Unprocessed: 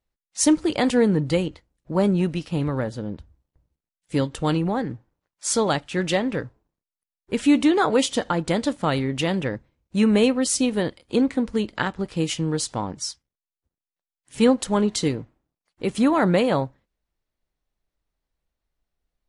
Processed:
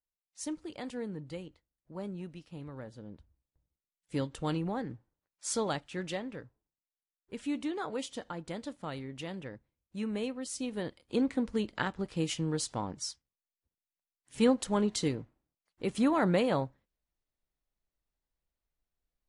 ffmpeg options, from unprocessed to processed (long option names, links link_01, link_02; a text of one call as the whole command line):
ffmpeg -i in.wav -af "volume=-1.5dB,afade=type=in:start_time=2.67:duration=1.51:silence=0.334965,afade=type=out:start_time=5.62:duration=0.76:silence=0.473151,afade=type=in:start_time=10.51:duration=0.83:silence=0.354813" out.wav